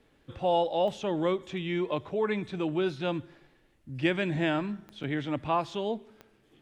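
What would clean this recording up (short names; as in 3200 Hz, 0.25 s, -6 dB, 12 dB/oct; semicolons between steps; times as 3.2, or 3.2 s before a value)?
de-click; interpolate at 5.03, 6.1 ms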